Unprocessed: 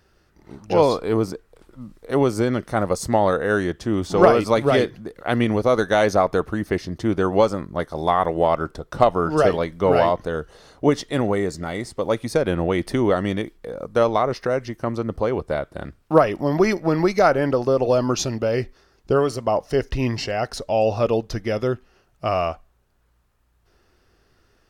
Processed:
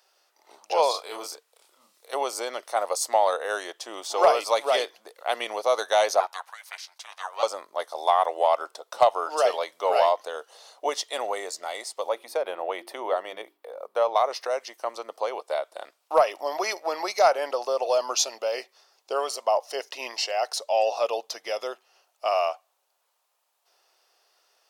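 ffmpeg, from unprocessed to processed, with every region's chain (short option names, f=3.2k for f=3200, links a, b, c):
-filter_complex "[0:a]asettb=1/sr,asplit=3[a][b][c];[a]atrim=end=0.914[d];[b]atrim=start=0.91:end=2.13,asetpts=PTS-STARTPTS,afade=t=in:d=0.004:c=qsin,afade=t=out:st=1.216:d=0.004:c=qsin,equalizer=f=550:w=0.45:g=-7,asplit=2[e][f];[f]adelay=30,volume=-3dB[g];[e][g]amix=inputs=2:normalize=0,atrim=end_sample=53802[h];[c]atrim=start=2.126[i];[d][h]acrossfade=d=0.004:c1=hsin:c2=qsin[j];[j][i]acrossfade=d=0.004:c1=qsin:c2=hsin,asettb=1/sr,asplit=3[k][l][m];[k]atrim=end=6.204[n];[l]atrim=start=6.2:end=7.43,asetpts=PTS-STARTPTS,afade=t=in:d=0.004:c=qsin,afade=t=out:st=1.226:d=0.004:c=qsin,highpass=f=840:w=0.5412,highpass=f=840:w=1.3066,aeval=exprs='val(0)*sin(2*PI*270*n/s)':c=same[o];[m]atrim=start=7.426[p];[n][o]acrossfade=d=0.004:c1=hsin:c2=qsin[q];[q][p]acrossfade=d=0.004:c1=qsin:c2=hsin,asettb=1/sr,asplit=3[r][s][t];[r]atrim=end=12.094[u];[s]atrim=start=12.09:end=14.16,asetpts=PTS-STARTPTS,afade=t=in:d=0.004:c=qsin,afade=t=out:st=2.066:d=0.004:c=qsin,equalizer=f=6.6k:t=o:w=1.9:g=-14,bandreject=f=50:t=h:w=6,bandreject=f=100:t=h:w=6,bandreject=f=150:t=h:w=6,bandreject=f=200:t=h:w=6,bandreject=f=250:t=h:w=6,bandreject=f=300:t=h:w=6,bandreject=f=350:t=h:w=6,bandreject=f=400:t=h:w=6[v];[t]atrim=start=14.156[w];[u][v]acrossfade=d=0.004:c1=hsin:c2=qsin[x];[x][w]acrossfade=d=0.004:c1=qsin:c2=hsin,highpass=f=670:w=0.5412,highpass=f=670:w=1.3066,equalizer=f=1.6k:w=1.2:g=-11.5,acontrast=70,volume=-2.5dB"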